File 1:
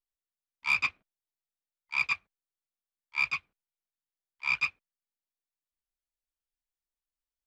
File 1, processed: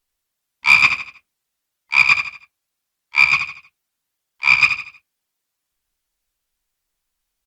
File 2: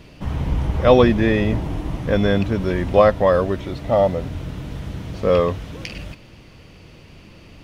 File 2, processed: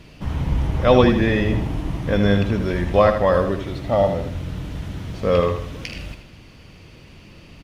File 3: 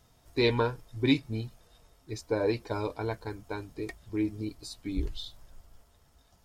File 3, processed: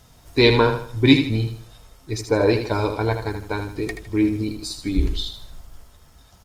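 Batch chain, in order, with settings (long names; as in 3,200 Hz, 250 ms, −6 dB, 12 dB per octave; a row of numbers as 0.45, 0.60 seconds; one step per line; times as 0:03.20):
parametric band 510 Hz −2.5 dB 1.9 octaves
on a send: repeating echo 79 ms, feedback 36%, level −8 dB
on the sum: Opus 64 kbit/s 48,000 Hz
normalise the peak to −1.5 dBFS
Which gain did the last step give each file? +15.5, 0.0, +11.5 decibels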